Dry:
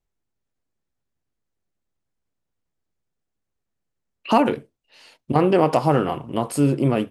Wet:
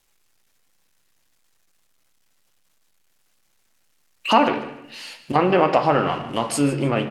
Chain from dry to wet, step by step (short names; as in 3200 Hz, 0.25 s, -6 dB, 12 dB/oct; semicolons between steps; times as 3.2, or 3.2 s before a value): G.711 law mismatch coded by mu; treble ducked by the level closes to 2700 Hz, closed at -14 dBFS; tilt shelf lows -6.5 dB, about 750 Hz; feedback echo 0.151 s, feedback 27%, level -15 dB; on a send at -8 dB: reverb RT60 0.80 s, pre-delay 3 ms; on the sum: gain +1 dB